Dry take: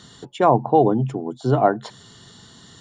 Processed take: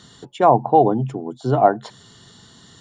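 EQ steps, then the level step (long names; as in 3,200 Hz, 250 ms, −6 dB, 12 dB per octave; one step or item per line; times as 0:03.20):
dynamic equaliser 750 Hz, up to +5 dB, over −26 dBFS, Q 1.9
−1.0 dB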